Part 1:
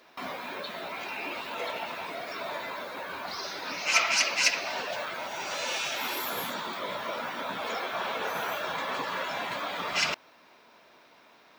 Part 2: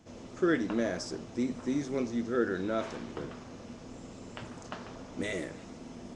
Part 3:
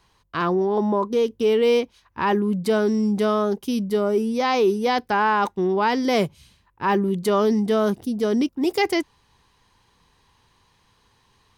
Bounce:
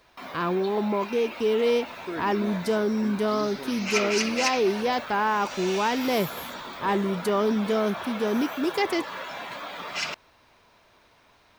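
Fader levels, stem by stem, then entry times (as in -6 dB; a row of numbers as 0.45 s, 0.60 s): -3.0 dB, -7.5 dB, -4.5 dB; 0.00 s, 1.65 s, 0.00 s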